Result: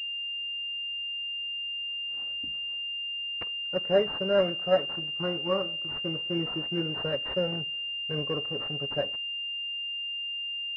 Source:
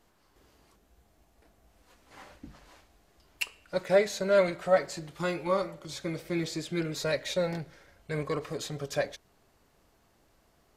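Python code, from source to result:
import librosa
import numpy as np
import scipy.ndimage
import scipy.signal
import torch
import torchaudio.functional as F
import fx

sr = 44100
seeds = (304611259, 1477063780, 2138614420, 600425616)

y = fx.law_mismatch(x, sr, coded='A')
y = scipy.signal.sosfilt(scipy.signal.butter(2, 49.0, 'highpass', fs=sr, output='sos'), y)
y = fx.peak_eq(y, sr, hz=930.0, db=-6.5, octaves=0.31)
y = fx.notch(y, sr, hz=640.0, q=12.0)
y = fx.pwm(y, sr, carrier_hz=2800.0)
y = y * 10.0 ** (1.5 / 20.0)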